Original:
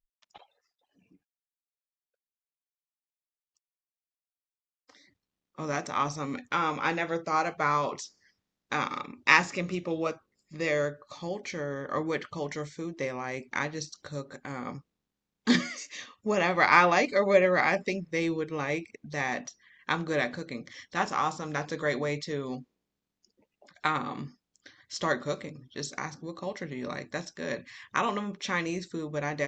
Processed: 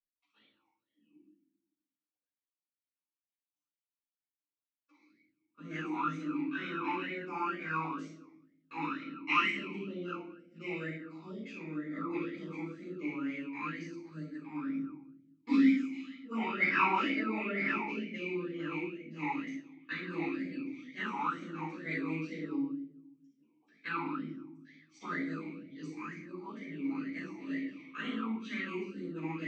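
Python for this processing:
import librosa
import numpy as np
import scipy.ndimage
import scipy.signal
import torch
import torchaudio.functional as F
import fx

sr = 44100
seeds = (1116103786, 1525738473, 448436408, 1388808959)

y = fx.pitch_heads(x, sr, semitones=1.5)
y = fx.room_shoebox(y, sr, seeds[0], volume_m3=250.0, walls='mixed', distance_m=5.4)
y = fx.vowel_sweep(y, sr, vowels='i-u', hz=2.1)
y = y * librosa.db_to_amplitude(-6.5)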